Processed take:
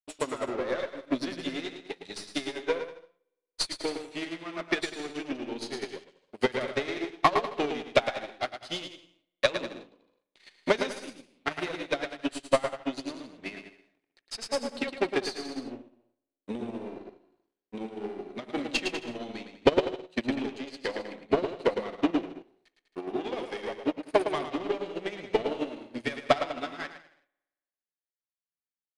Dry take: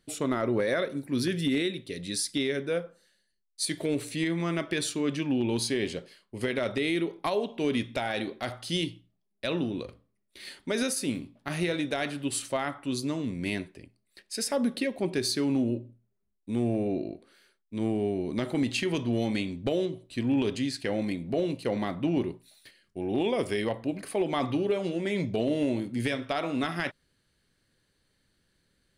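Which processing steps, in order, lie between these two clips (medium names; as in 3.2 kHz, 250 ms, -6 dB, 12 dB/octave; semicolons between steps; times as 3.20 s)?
partial rectifier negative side -12 dB; high-pass 600 Hz 6 dB/octave; waveshaping leveller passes 3; transient shaper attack +12 dB, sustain -1 dB; distance through air 90 m; bouncing-ball echo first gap 110 ms, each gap 0.8×, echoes 5; spring tank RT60 1.3 s, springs 56 ms, DRR 19.5 dB; upward expansion 2.5:1, over -35 dBFS; trim +1.5 dB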